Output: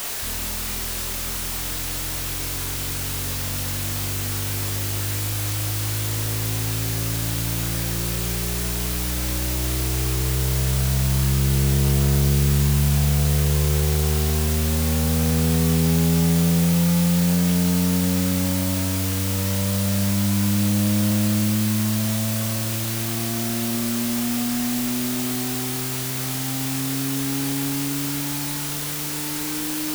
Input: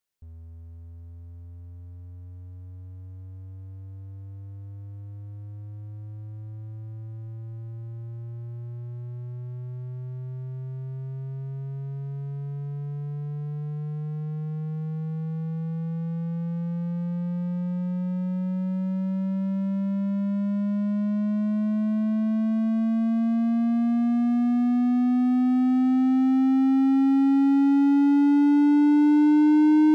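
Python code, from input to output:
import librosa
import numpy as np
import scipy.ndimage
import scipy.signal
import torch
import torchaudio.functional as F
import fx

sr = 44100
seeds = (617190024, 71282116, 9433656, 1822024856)

y = fx.octave_divider(x, sr, octaves=1, level_db=0.0)
y = scipy.signal.sosfilt(scipy.signal.butter(12, 1600.0, 'lowpass', fs=sr, output='sos'), y)
y = fx.low_shelf(y, sr, hz=160.0, db=-6.0)
y = fx.over_compress(y, sr, threshold_db=-30.0, ratio=-1.0)
y = fx.quant_dither(y, sr, seeds[0], bits=6, dither='triangular')
y = fx.doubler(y, sr, ms=29.0, db=-4.5)
y = F.gain(torch.from_numpy(y), 6.0).numpy()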